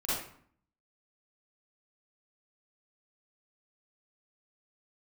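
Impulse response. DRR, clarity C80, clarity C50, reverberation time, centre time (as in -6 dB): -10.5 dB, 3.5 dB, -3.5 dB, 0.55 s, 72 ms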